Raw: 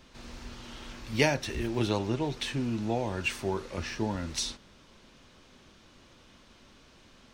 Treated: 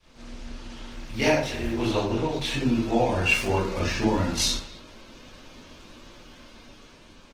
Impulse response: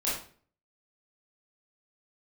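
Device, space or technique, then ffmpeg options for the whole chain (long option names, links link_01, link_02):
speakerphone in a meeting room: -filter_complex "[0:a]adynamicequalizer=threshold=0.00794:dfrequency=250:dqfactor=1.1:tfrequency=250:tqfactor=1.1:attack=5:release=100:ratio=0.375:range=2:mode=cutabove:tftype=bell[link_01];[1:a]atrim=start_sample=2205[link_02];[link_01][link_02]afir=irnorm=-1:irlink=0,asplit=2[link_03][link_04];[link_04]adelay=250,highpass=300,lowpass=3400,asoftclip=type=hard:threshold=-13.5dB,volume=-18dB[link_05];[link_03][link_05]amix=inputs=2:normalize=0,dynaudnorm=framelen=470:gausssize=7:maxgain=7dB,volume=-4.5dB" -ar 48000 -c:a libopus -b:a 16k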